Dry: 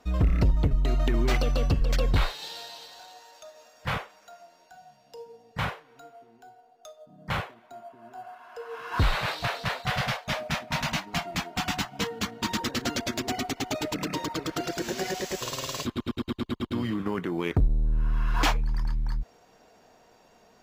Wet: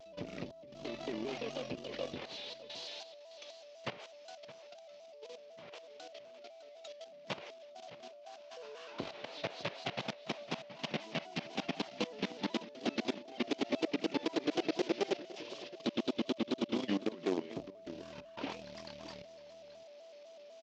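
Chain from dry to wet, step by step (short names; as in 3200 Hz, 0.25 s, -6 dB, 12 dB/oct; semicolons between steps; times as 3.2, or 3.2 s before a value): delta modulation 32 kbps, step -45 dBFS; compressor 6:1, threshold -28 dBFS, peak gain reduction 10 dB; step gate ".xx.xxxxxxxxxxx" 89 bpm -12 dB; level quantiser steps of 16 dB; echo 0.613 s -12.5 dB; whine 620 Hz -49 dBFS; bell 340 Hz +8.5 dB 2.9 oct; added harmonics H 4 -21 dB, 7 -25 dB, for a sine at -14.5 dBFS; HPF 260 Hz 12 dB/oct; resonant high shelf 2000 Hz +9.5 dB, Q 1.5; shaped vibrato square 4 Hz, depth 100 cents; gain -4 dB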